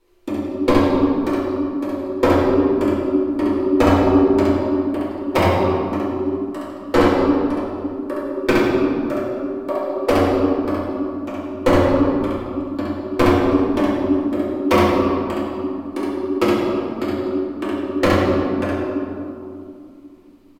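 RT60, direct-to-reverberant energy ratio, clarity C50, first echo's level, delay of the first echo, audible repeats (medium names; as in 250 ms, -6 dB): 2.5 s, -8.5 dB, -3.0 dB, -1.0 dB, 67 ms, 1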